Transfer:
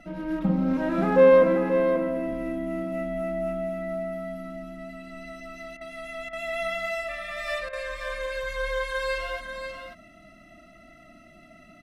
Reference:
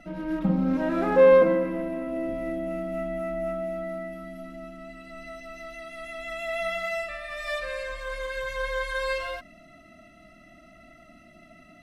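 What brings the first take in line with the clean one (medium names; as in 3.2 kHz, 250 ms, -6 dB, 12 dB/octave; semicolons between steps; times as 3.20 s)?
interpolate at 5.77/6.29/7.69 s, 39 ms; inverse comb 535 ms -7.5 dB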